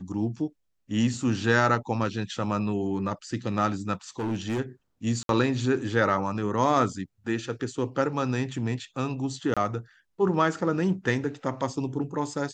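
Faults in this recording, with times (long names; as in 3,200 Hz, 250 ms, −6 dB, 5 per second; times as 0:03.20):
0:04.19–0:04.60: clipping −24.5 dBFS
0:05.23–0:05.29: drop-out 62 ms
0:09.54–0:09.57: drop-out 26 ms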